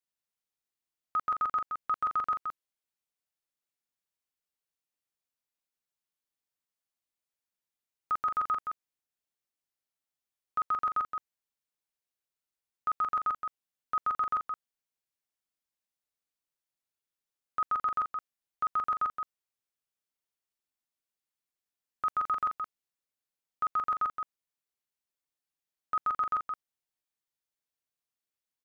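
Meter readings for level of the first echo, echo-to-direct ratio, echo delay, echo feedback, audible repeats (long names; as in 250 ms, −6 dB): −6.0 dB, −6.0 dB, 170 ms, repeats not evenly spaced, 1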